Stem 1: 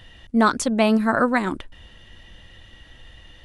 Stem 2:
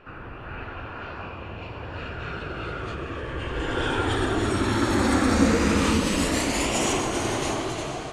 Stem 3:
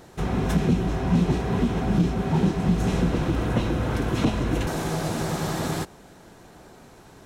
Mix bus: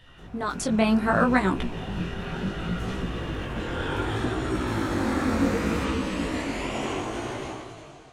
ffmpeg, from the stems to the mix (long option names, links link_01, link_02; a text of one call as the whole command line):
ffmpeg -i stem1.wav -i stem2.wav -i stem3.wav -filter_complex "[0:a]acompressor=threshold=-25dB:ratio=2,volume=-3.5dB[link_01];[1:a]acrossover=split=3400[link_02][link_03];[link_03]acompressor=threshold=-42dB:ratio=4:attack=1:release=60[link_04];[link_02][link_04]amix=inputs=2:normalize=0,volume=-13dB[link_05];[2:a]volume=-18.5dB[link_06];[link_01][link_05][link_06]amix=inputs=3:normalize=0,dynaudnorm=framelen=110:gausssize=13:maxgain=11.5dB,flanger=delay=15.5:depth=7.5:speed=0.67" out.wav